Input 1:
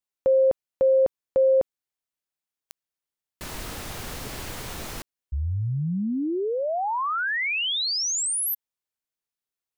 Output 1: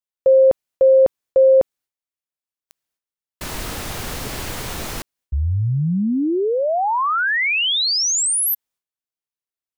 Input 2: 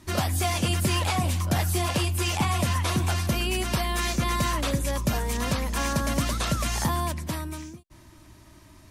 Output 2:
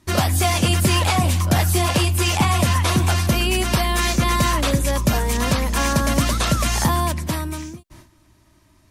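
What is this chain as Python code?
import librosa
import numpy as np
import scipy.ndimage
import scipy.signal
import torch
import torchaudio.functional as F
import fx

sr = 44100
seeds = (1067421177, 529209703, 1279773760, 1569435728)

y = fx.gate_hold(x, sr, open_db=-39.0, close_db=-47.0, hold_ms=194.0, range_db=-12, attack_ms=2.9, release_ms=83.0)
y = y * librosa.db_to_amplitude(7.0)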